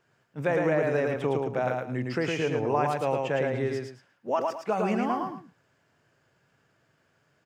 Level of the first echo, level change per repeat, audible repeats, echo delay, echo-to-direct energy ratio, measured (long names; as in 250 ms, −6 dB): −3.0 dB, −11.5 dB, 2, 110 ms, −2.5 dB